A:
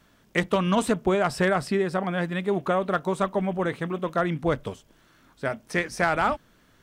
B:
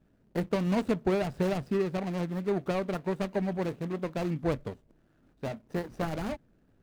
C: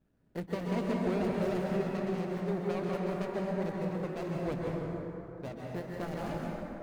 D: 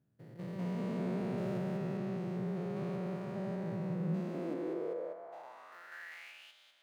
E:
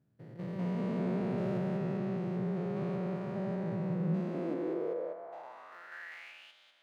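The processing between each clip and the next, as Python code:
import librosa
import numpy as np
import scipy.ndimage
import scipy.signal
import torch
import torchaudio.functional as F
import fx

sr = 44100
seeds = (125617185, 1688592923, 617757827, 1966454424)

y1 = scipy.ndimage.median_filter(x, 41, mode='constant')
y1 = F.gain(torch.from_numpy(y1), -3.0).numpy()
y2 = fx.rev_plate(y1, sr, seeds[0], rt60_s=3.4, hf_ratio=0.4, predelay_ms=115, drr_db=-3.0)
y2 = F.gain(torch.from_numpy(y2), -7.5).numpy()
y3 = fx.spec_steps(y2, sr, hold_ms=200)
y3 = fx.filter_sweep_highpass(y3, sr, from_hz=120.0, to_hz=3300.0, start_s=3.83, end_s=6.56, q=5.1)
y3 = F.gain(torch.from_numpy(y3), -6.0).numpy()
y4 = fx.lowpass(y3, sr, hz=3500.0, slope=6)
y4 = F.gain(torch.from_numpy(y4), 3.0).numpy()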